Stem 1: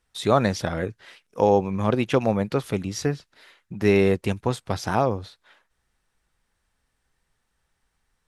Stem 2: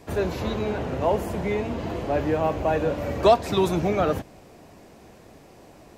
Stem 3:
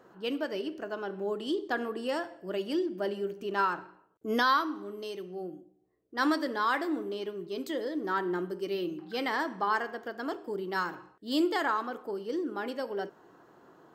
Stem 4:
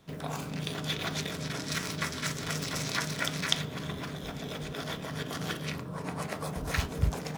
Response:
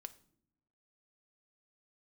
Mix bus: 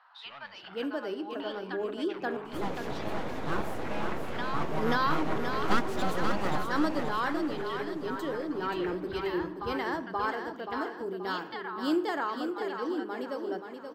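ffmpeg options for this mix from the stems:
-filter_complex "[0:a]asoftclip=type=tanh:threshold=-20dB,volume=-13dB,asplit=2[link_01][link_02];[link_02]volume=-20.5dB[link_03];[1:a]aeval=exprs='abs(val(0))':channel_layout=same,adelay=2450,volume=-9dB,asplit=2[link_04][link_05];[link_05]volume=-5dB[link_06];[2:a]bandreject=frequency=50:width_type=h:width=6,bandreject=frequency=100:width_type=h:width=6,bandreject=frequency=150:width_type=h:width=6,bandreject=frequency=200:width_type=h:width=6,volume=1dB,asplit=3[link_07][link_08][link_09];[link_07]atrim=end=1.84,asetpts=PTS-STARTPTS,afade=type=out:start_time=1.836:duration=0.004:curve=hsin[link_10];[link_08]atrim=start=1.84:end=3.87,asetpts=PTS-STARTPTS,volume=0[link_11];[link_09]atrim=start=3.87,asetpts=PTS-STARTPTS,afade=type=in:duration=0.004:curve=hsin[link_12];[link_10][link_11][link_12]concat=n=3:v=0:a=1,asplit=2[link_13][link_14];[link_14]volume=-6.5dB[link_15];[3:a]lowpass=1800,adelay=2100,volume=-5.5dB,asplit=3[link_16][link_17][link_18];[link_17]volume=-10.5dB[link_19];[link_18]volume=-15.5dB[link_20];[link_01][link_13][link_16]amix=inputs=3:normalize=0,asuperpass=centerf=2000:order=12:qfactor=0.51,acompressor=threshold=-45dB:ratio=2.5,volume=0dB[link_21];[4:a]atrim=start_sample=2205[link_22];[link_03][link_19]amix=inputs=2:normalize=0[link_23];[link_23][link_22]afir=irnorm=-1:irlink=0[link_24];[link_06][link_15][link_20]amix=inputs=3:normalize=0,aecho=0:1:529|1058|1587|2116|2645|3174:1|0.44|0.194|0.0852|0.0375|0.0165[link_25];[link_04][link_21][link_24][link_25]amix=inputs=4:normalize=0,equalizer=frequency=330:width=0.35:gain=5"

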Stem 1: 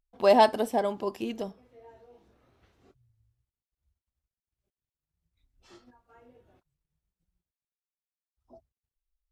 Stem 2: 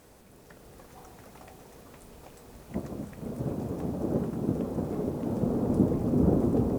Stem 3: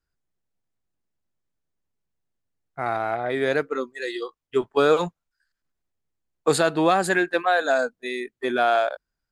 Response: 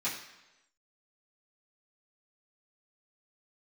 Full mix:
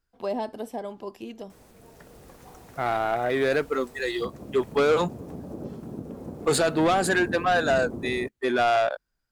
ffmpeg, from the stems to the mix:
-filter_complex "[0:a]acrossover=split=480[link_01][link_02];[link_02]acompressor=threshold=-29dB:ratio=4[link_03];[link_01][link_03]amix=inputs=2:normalize=0,volume=-5dB[link_04];[1:a]acompressor=threshold=-42dB:ratio=2,adelay=1500,volume=1.5dB[link_05];[2:a]asoftclip=type=tanh:threshold=-18dB,volume=2dB[link_06];[link_04][link_05][link_06]amix=inputs=3:normalize=0"

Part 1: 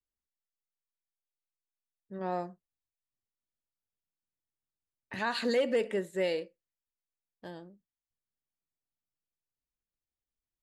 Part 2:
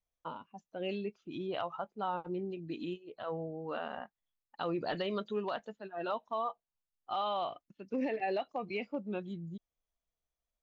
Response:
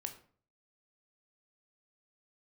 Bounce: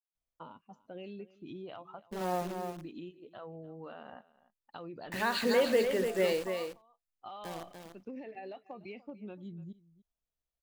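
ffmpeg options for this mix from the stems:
-filter_complex "[0:a]agate=range=-33dB:threshold=-46dB:ratio=3:detection=peak,bandreject=frequency=50:width_type=h:width=6,bandreject=frequency=100:width_type=h:width=6,bandreject=frequency=150:width_type=h:width=6,bandreject=frequency=200:width_type=h:width=6,bandreject=frequency=250:width_type=h:width=6,bandreject=frequency=300:width_type=h:width=6,bandreject=frequency=350:width_type=h:width=6,bandreject=frequency=400:width_type=h:width=6,acrusher=bits=8:dc=4:mix=0:aa=0.000001,volume=1dB,asplit=2[link_01][link_02];[link_02]volume=-6.5dB[link_03];[1:a]acompressor=threshold=-38dB:ratio=6,lowshelf=frequency=350:gain=5,adelay=150,volume=-5.5dB,asplit=2[link_04][link_05];[link_05]volume=-19.5dB[link_06];[link_03][link_06]amix=inputs=2:normalize=0,aecho=0:1:293:1[link_07];[link_01][link_04][link_07]amix=inputs=3:normalize=0"

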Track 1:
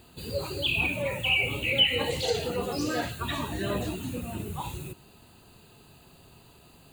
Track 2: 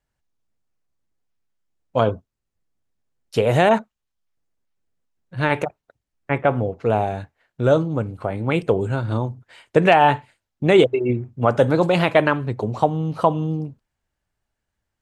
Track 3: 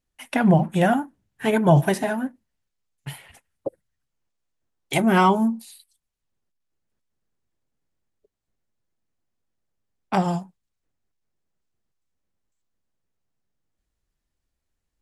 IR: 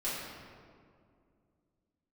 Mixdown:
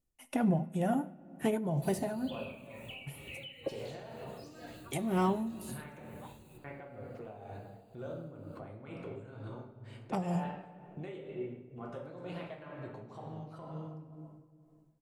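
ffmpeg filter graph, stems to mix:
-filter_complex "[0:a]alimiter=limit=-18.5dB:level=0:latency=1:release=222,adelay=1650,volume=-14.5dB,asplit=2[link_01][link_02];[link_02]volume=-13.5dB[link_03];[1:a]acompressor=threshold=-24dB:ratio=4,adelay=350,volume=-12.5dB,asplit=2[link_04][link_05];[link_05]volume=-10dB[link_06];[2:a]equalizer=frequency=1000:width_type=o:width=1:gain=-5,equalizer=frequency=2000:width_type=o:width=1:gain=-6,equalizer=frequency=4000:width_type=o:width=1:gain=-8,acompressor=threshold=-23dB:ratio=6,bandreject=frequency=1600:width=7.6,volume=-2.5dB,asplit=2[link_07][link_08];[link_08]volume=-19dB[link_09];[link_01][link_04]amix=inputs=2:normalize=0,alimiter=level_in=15dB:limit=-24dB:level=0:latency=1:release=363,volume=-15dB,volume=0dB[link_10];[3:a]atrim=start_sample=2205[link_11];[link_03][link_06][link_09]amix=inputs=3:normalize=0[link_12];[link_12][link_11]afir=irnorm=-1:irlink=0[link_13];[link_07][link_10][link_13]amix=inputs=3:normalize=0,tremolo=f=2.1:d=0.58"

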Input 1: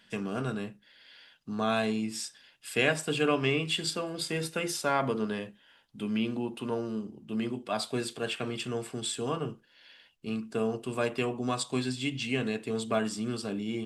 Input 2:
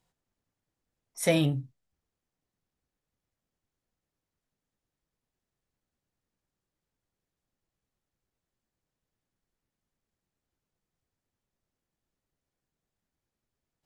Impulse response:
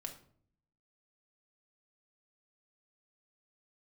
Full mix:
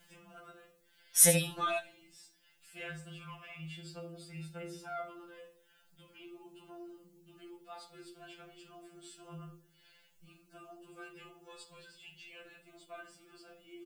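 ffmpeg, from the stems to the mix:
-filter_complex "[0:a]acompressor=mode=upward:threshold=-37dB:ratio=2.5,adynamicequalizer=threshold=0.00398:dfrequency=4000:dqfactor=0.7:tfrequency=4000:tqfactor=0.7:attack=5:release=100:ratio=0.375:range=2.5:mode=cutabove:tftype=highshelf,volume=-1.5dB,asplit=2[link_01][link_02];[link_02]volume=-10.5dB[link_03];[1:a]acompressor=threshold=-31dB:ratio=6,crystalizer=i=4:c=0,volume=3dB,asplit=3[link_04][link_05][link_06];[link_05]volume=-10dB[link_07];[link_06]apad=whole_len=611028[link_08];[link_01][link_08]sidechaingate=range=-33dB:threshold=-54dB:ratio=16:detection=peak[link_09];[2:a]atrim=start_sample=2205[link_10];[link_03][link_10]afir=irnorm=-1:irlink=0[link_11];[link_07]aecho=0:1:73:1[link_12];[link_09][link_04][link_11][link_12]amix=inputs=4:normalize=0,afftfilt=real='re*2.83*eq(mod(b,8),0)':imag='im*2.83*eq(mod(b,8),0)':win_size=2048:overlap=0.75"

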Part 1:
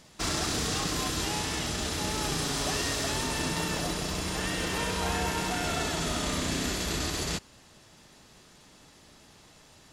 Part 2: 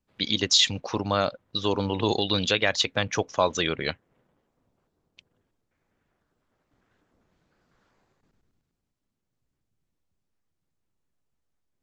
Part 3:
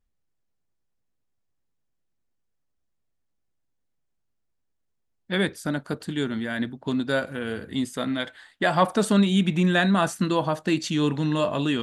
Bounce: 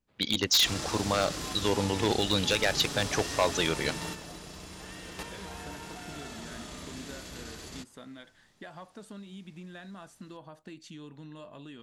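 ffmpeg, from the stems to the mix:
ffmpeg -i stem1.wav -i stem2.wav -i stem3.wav -filter_complex "[0:a]adelay=450,volume=-6dB[link_01];[1:a]aeval=exprs='0.211*(abs(mod(val(0)/0.211+3,4)-2)-1)':channel_layout=same,volume=-2dB,asplit=2[link_02][link_03];[2:a]acompressor=threshold=-28dB:ratio=6,volume=-15dB[link_04];[link_03]apad=whole_len=461734[link_05];[link_01][link_05]sidechaingate=range=-7dB:threshold=-59dB:ratio=16:detection=peak[link_06];[link_06][link_02][link_04]amix=inputs=3:normalize=0" out.wav

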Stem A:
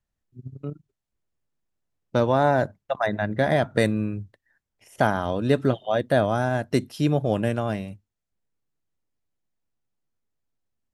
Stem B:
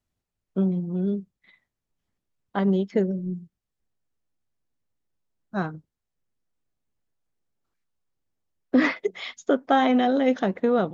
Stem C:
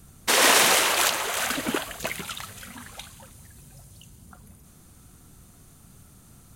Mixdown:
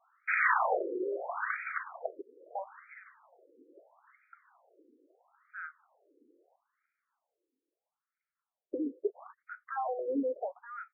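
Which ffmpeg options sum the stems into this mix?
ffmpeg -i stem1.wav -i stem2.wav -i stem3.wav -filter_complex "[1:a]volume=-1.5dB[link_01];[2:a]lowshelf=frequency=360:gain=6,volume=-3dB,asplit=3[link_02][link_03][link_04];[link_02]atrim=end=2.22,asetpts=PTS-STARTPTS,afade=type=out:start_time=2.216:duration=0.004:curve=hsin[link_05];[link_03]atrim=start=2.22:end=3.54,asetpts=PTS-STARTPTS,volume=0[link_06];[link_04]atrim=start=3.54,asetpts=PTS-STARTPTS,afade=type=in:duration=0.004:curve=hsin[link_07];[link_05][link_06][link_07]concat=n=3:v=0:a=1,asplit=2[link_08][link_09];[link_09]volume=-20.5dB[link_10];[link_01]alimiter=limit=-21dB:level=0:latency=1:release=24,volume=0dB[link_11];[link_10]aecho=0:1:1016|2032|3048|4064|5080|6096:1|0.43|0.185|0.0795|0.0342|0.0147[link_12];[link_08][link_11][link_12]amix=inputs=3:normalize=0,afftfilt=real='re*between(b*sr/1024,360*pow(1800/360,0.5+0.5*sin(2*PI*0.76*pts/sr))/1.41,360*pow(1800/360,0.5+0.5*sin(2*PI*0.76*pts/sr))*1.41)':imag='im*between(b*sr/1024,360*pow(1800/360,0.5+0.5*sin(2*PI*0.76*pts/sr))/1.41,360*pow(1800/360,0.5+0.5*sin(2*PI*0.76*pts/sr))*1.41)':win_size=1024:overlap=0.75" out.wav

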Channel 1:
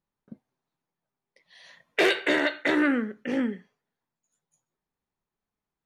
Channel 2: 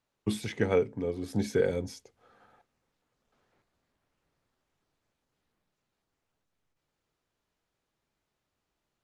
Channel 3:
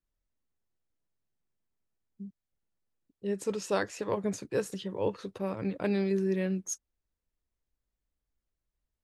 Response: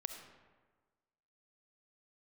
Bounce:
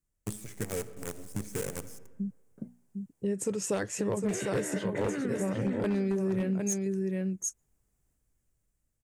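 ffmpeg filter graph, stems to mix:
-filter_complex "[0:a]equalizer=frequency=400:width=0.33:gain=7.5,bandreject=frequency=60:width_type=h:width=6,bandreject=frequency=120:width_type=h:width=6,bandreject=frequency=180:width_type=h:width=6,bandreject=frequency=240:width_type=h:width=6,adelay=2300,volume=-3.5dB,asplit=2[link_01][link_02];[link_02]volume=-12.5dB[link_03];[1:a]acrusher=bits=5:dc=4:mix=0:aa=0.000001,volume=-11dB,asplit=2[link_04][link_05];[link_05]volume=-4.5dB[link_06];[2:a]dynaudnorm=framelen=230:gausssize=7:maxgain=6dB,volume=2dB,asplit=2[link_07][link_08];[link_08]volume=-6dB[link_09];[link_01][link_04]amix=inputs=2:normalize=0,highshelf=frequency=4500:gain=8.5,alimiter=limit=-21dB:level=0:latency=1:release=43,volume=0dB[link_10];[3:a]atrim=start_sample=2205[link_11];[link_06][link_11]afir=irnorm=-1:irlink=0[link_12];[link_03][link_09]amix=inputs=2:normalize=0,aecho=0:1:754:1[link_13];[link_07][link_10][link_12][link_13]amix=inputs=4:normalize=0,equalizer=frequency=125:width_type=o:width=1:gain=8,equalizer=frequency=1000:width_type=o:width=1:gain=-4,equalizer=frequency=4000:width_type=o:width=1:gain=-10,equalizer=frequency=8000:width_type=o:width=1:gain=9,aeval=exprs='0.224*(abs(mod(val(0)/0.224+3,4)-2)-1)':channel_layout=same,acompressor=threshold=-30dB:ratio=3"

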